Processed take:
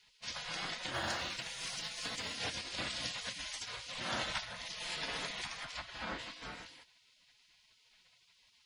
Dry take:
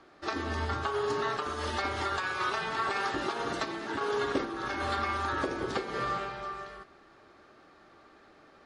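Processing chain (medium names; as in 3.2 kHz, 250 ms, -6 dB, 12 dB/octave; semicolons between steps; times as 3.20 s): spectral gate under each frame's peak -20 dB weak; 0.94–2.35 s: short-mantissa float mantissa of 4-bit; 5.64–6.18 s: low-pass 3.6 kHz -> 1.9 kHz 6 dB/octave; trim +4.5 dB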